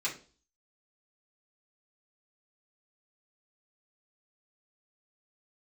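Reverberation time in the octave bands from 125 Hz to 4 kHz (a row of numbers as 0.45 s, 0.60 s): 0.45 s, 0.45 s, 0.45 s, 0.35 s, 0.30 s, 0.40 s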